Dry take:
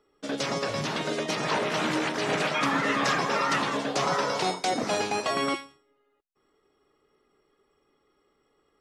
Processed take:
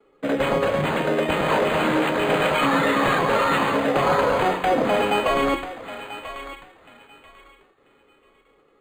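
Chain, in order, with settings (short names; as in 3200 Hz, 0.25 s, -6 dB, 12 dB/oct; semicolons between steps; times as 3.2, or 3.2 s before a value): notches 60/120/180/240/300/360 Hz; gate with hold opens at -60 dBFS; HPF 120 Hz 24 dB/oct; in parallel at +2 dB: limiter -24 dBFS, peak gain reduction 10.5 dB; on the sum: small resonant body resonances 520/2500 Hz, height 9 dB, ringing for 90 ms; on a send: thinning echo 0.99 s, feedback 26%, high-pass 1100 Hz, level -9.5 dB; on the sum: decimation joined by straight lines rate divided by 8×; gain +2.5 dB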